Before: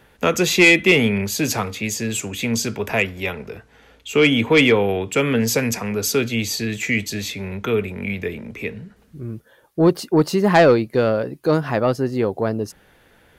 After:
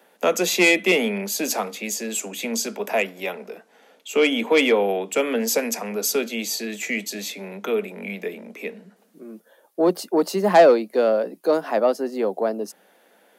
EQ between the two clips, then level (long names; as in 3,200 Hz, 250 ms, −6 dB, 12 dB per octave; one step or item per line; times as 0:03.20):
Butterworth high-pass 180 Hz 96 dB per octave
parametric band 650 Hz +9.5 dB 1.1 octaves
high-shelf EQ 5,000 Hz +9 dB
−7.0 dB